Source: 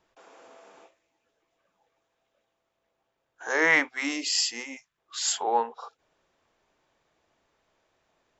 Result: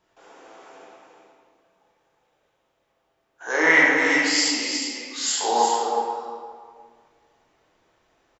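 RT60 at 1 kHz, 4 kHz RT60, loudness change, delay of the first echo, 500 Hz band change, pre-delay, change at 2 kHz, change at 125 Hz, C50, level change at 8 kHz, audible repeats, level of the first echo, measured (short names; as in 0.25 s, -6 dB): 1.8 s, 1.3 s, +5.0 dB, 0.365 s, +7.0 dB, 13 ms, +7.5 dB, +7.0 dB, -2.5 dB, n/a, 1, -6.5 dB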